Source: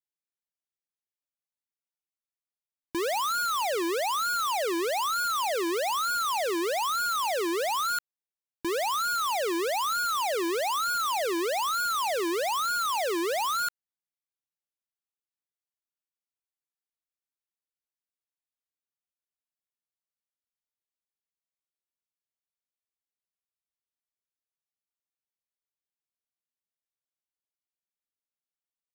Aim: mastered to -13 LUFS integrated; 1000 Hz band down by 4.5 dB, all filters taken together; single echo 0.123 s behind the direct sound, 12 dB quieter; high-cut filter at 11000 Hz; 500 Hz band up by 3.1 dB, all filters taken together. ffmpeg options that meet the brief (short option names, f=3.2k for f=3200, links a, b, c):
-af "lowpass=11k,equalizer=f=500:t=o:g=6,equalizer=f=1k:t=o:g=-8,aecho=1:1:123:0.251,volume=15dB"